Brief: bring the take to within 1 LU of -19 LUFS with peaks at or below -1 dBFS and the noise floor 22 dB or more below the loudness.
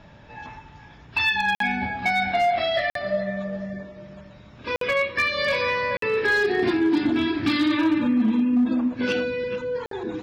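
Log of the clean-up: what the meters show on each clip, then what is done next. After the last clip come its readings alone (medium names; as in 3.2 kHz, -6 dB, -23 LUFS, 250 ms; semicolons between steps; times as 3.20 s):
clipped samples 0.9%; clipping level -15.0 dBFS; dropouts 5; longest dropout 53 ms; loudness -23.0 LUFS; peak level -15.0 dBFS; loudness target -19.0 LUFS
-> clip repair -15 dBFS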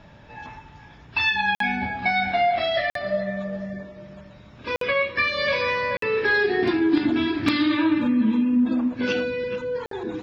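clipped samples 0.0%; dropouts 5; longest dropout 53 ms
-> interpolate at 1.55/2.90/4.76/5.97/9.86 s, 53 ms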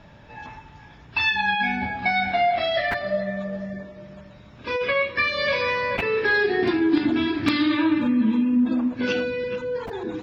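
dropouts 0; loudness -22.5 LUFS; peak level -6.0 dBFS; loudness target -19.0 LUFS
-> trim +3.5 dB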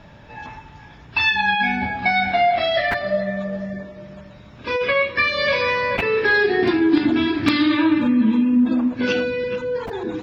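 loudness -19.0 LUFS; peak level -2.5 dBFS; noise floor -44 dBFS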